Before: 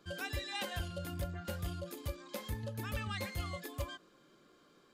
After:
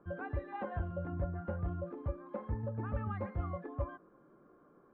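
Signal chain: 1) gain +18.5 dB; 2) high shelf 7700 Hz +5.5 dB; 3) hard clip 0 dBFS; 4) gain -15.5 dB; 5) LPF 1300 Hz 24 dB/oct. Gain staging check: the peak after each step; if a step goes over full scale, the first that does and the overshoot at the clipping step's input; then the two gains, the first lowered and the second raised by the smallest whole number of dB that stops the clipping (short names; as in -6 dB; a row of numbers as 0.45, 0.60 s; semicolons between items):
-7.5, -6.0, -6.0, -21.5, -24.0 dBFS; no overload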